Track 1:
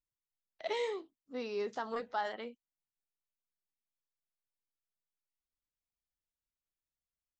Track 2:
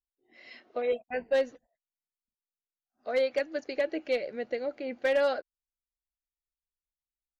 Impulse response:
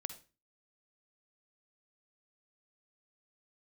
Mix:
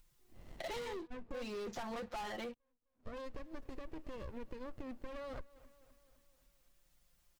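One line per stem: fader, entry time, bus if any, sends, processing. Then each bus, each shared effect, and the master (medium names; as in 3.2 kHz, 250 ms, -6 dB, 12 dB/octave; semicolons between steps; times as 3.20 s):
-8.5 dB, 0.00 s, no send, no echo send, comb 5.7 ms, depth 84%; waveshaping leveller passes 5; upward compressor, threshold -39 dBFS
-4.5 dB, 0.00 s, no send, echo send -23.5 dB, peak limiter -28.5 dBFS, peak gain reduction 9.5 dB; sliding maximum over 33 samples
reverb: none
echo: feedback delay 257 ms, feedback 56%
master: bass shelf 130 Hz +11 dB; compression 4:1, threshold -42 dBFS, peak gain reduction 11 dB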